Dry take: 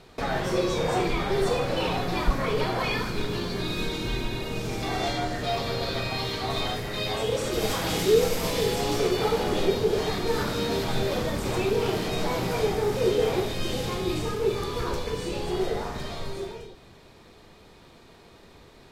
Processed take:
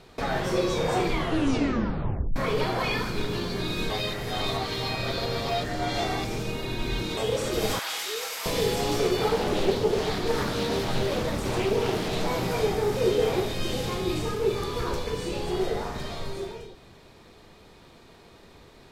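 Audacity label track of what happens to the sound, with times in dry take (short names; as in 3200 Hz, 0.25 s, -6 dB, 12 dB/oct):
1.110000	1.110000	tape stop 1.25 s
3.900000	7.170000	reverse
7.790000	8.460000	Chebyshev high-pass 1200 Hz
9.290000	12.270000	Doppler distortion depth 0.37 ms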